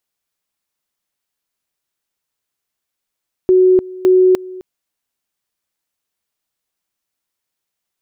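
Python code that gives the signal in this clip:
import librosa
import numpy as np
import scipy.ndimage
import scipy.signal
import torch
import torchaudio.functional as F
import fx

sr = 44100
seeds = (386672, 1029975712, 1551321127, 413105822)

y = fx.two_level_tone(sr, hz=370.0, level_db=-6.5, drop_db=20.5, high_s=0.3, low_s=0.26, rounds=2)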